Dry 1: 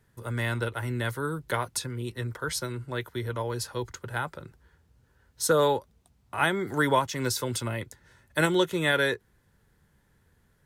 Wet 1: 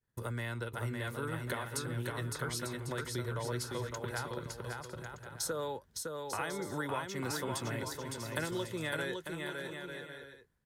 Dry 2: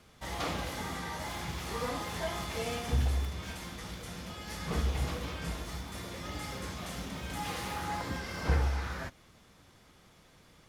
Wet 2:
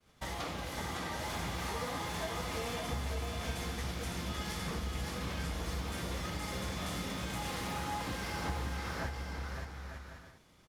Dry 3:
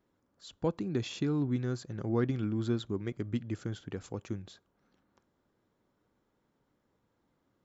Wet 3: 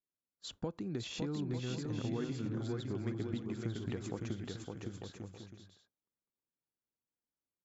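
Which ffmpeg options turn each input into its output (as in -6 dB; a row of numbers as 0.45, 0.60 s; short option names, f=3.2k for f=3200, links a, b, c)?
-filter_complex "[0:a]agate=range=-33dB:threshold=-51dB:ratio=3:detection=peak,acompressor=threshold=-41dB:ratio=5,asplit=2[a][b];[b]aecho=0:1:560|896|1098|1219|1291:0.631|0.398|0.251|0.158|0.1[c];[a][c]amix=inputs=2:normalize=0,volume=4dB"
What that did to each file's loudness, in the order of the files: -9.5, -2.0, -5.5 LU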